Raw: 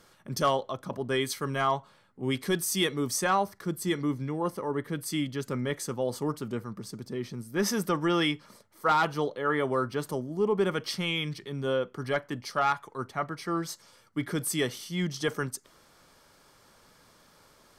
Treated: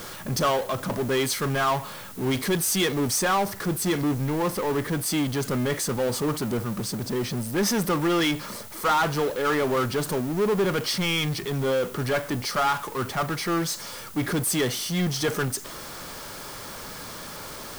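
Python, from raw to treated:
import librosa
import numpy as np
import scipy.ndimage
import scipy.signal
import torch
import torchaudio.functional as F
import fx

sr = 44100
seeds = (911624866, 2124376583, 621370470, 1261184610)

y = fx.power_curve(x, sr, exponent=0.5)
y = fx.dmg_noise_colour(y, sr, seeds[0], colour='blue', level_db=-44.0)
y = F.gain(torch.from_numpy(y), -1.5).numpy()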